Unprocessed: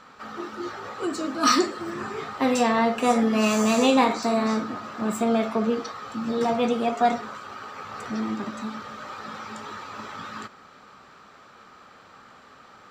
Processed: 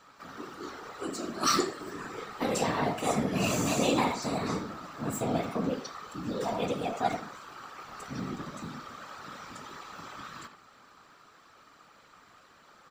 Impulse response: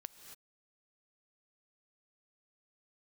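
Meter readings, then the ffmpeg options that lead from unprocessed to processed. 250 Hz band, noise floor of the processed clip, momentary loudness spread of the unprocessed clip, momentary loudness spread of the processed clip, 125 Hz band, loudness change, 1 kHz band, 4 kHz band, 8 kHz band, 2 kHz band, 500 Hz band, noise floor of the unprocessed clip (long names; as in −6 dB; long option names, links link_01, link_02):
−9.0 dB, −58 dBFS, 16 LU, 17 LU, +2.0 dB, −7.5 dB, −7.5 dB, −5.0 dB, −2.5 dB, −7.0 dB, −7.5 dB, −51 dBFS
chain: -filter_complex "[0:a]asplit=2[link_01][link_02];[link_02]adelay=80,highpass=300,lowpass=3400,asoftclip=type=hard:threshold=-16dB,volume=-8dB[link_03];[link_01][link_03]amix=inputs=2:normalize=0,crystalizer=i=1.5:c=0,afftfilt=real='hypot(re,im)*cos(2*PI*random(0))':imag='hypot(re,im)*sin(2*PI*random(1))':win_size=512:overlap=0.75,volume=-2.5dB"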